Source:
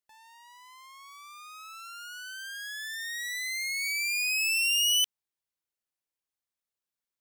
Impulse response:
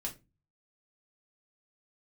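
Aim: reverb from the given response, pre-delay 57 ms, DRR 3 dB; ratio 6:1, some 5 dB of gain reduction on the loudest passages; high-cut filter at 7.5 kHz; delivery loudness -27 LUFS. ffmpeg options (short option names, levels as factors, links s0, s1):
-filter_complex "[0:a]lowpass=7500,acompressor=threshold=0.0355:ratio=6,asplit=2[s0][s1];[1:a]atrim=start_sample=2205,adelay=57[s2];[s1][s2]afir=irnorm=-1:irlink=0,volume=0.708[s3];[s0][s3]amix=inputs=2:normalize=0,volume=1.33"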